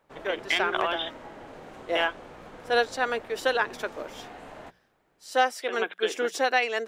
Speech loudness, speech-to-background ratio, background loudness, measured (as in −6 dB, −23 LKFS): −27.5 LKFS, 17.5 dB, −45.0 LKFS